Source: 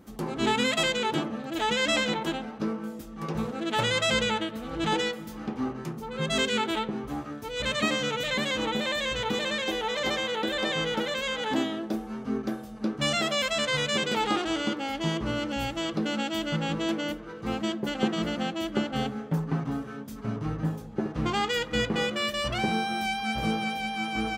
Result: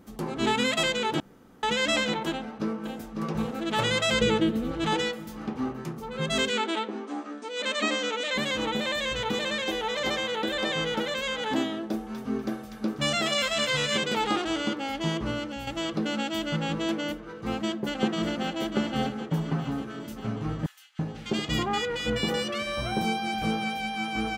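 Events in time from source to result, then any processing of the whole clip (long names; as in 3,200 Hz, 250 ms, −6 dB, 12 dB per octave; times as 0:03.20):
0:01.20–0:01.63: fill with room tone
0:02.30–0:03.40: delay throw 550 ms, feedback 65%, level −6.5 dB
0:04.21–0:04.72: low shelf with overshoot 540 Hz +7.5 dB, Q 1.5
0:06.51–0:08.35: linear-phase brick-wall band-pass 210–9,200 Hz
0:11.82–0:13.97: delay with a high-pass on its return 245 ms, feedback 33%, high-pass 1,700 Hz, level −4 dB
0:15.26–0:15.67: fade out, to −8.5 dB
0:17.61–0:18.53: delay throw 590 ms, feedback 70%, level −9 dB
0:20.66–0:23.42: multiband delay without the direct sound highs, lows 330 ms, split 1,700 Hz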